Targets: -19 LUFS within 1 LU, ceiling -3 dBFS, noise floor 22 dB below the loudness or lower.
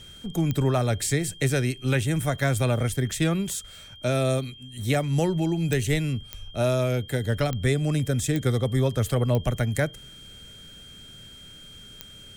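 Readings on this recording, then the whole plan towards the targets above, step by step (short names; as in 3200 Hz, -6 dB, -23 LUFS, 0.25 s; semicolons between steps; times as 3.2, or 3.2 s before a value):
clicks 7; steady tone 3200 Hz; tone level -45 dBFS; loudness -25.5 LUFS; peak -11.0 dBFS; loudness target -19.0 LUFS
-> de-click; notch 3200 Hz, Q 30; gain +6.5 dB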